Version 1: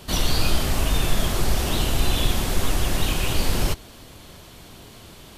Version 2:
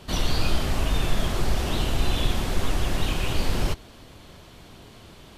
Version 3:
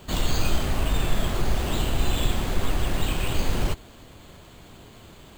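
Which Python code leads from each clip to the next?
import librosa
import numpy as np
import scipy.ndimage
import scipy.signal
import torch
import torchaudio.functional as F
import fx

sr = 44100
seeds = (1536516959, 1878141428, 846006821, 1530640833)

y1 = fx.high_shelf(x, sr, hz=7000.0, db=-10.5)
y1 = y1 * librosa.db_to_amplitude(-2.0)
y2 = np.repeat(scipy.signal.resample_poly(y1, 1, 4), 4)[:len(y1)]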